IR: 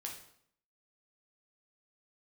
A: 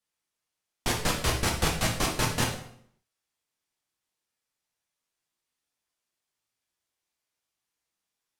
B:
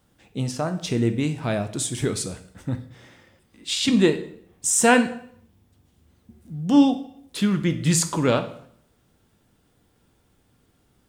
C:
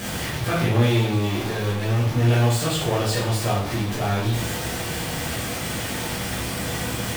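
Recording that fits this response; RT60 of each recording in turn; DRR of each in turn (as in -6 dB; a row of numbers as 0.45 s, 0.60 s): A; 0.65 s, 0.65 s, 0.65 s; -0.5 dB, 8.0 dB, -7.0 dB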